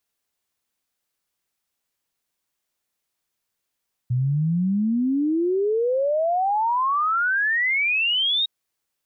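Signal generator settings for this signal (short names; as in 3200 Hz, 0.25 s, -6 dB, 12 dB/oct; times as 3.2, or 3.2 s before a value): log sweep 120 Hz -> 3800 Hz 4.36 s -18.5 dBFS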